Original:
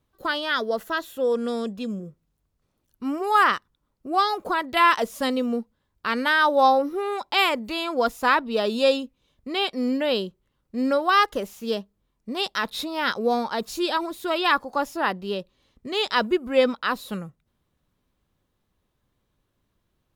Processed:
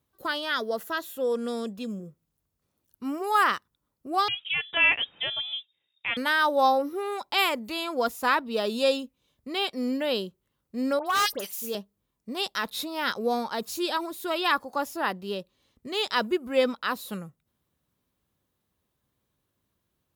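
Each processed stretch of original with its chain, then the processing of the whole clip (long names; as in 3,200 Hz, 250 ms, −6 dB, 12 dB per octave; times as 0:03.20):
0:04.28–0:06.17: parametric band 180 Hz −14.5 dB 1.2 octaves + voice inversion scrambler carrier 3,700 Hz
0:10.99–0:11.75: spectral tilt +2.5 dB per octave + all-pass dispersion highs, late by 73 ms, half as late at 2,100 Hz + hard clipping −17 dBFS
whole clip: high-pass filter 63 Hz; high-shelf EQ 8,500 Hz +10.5 dB; level −4 dB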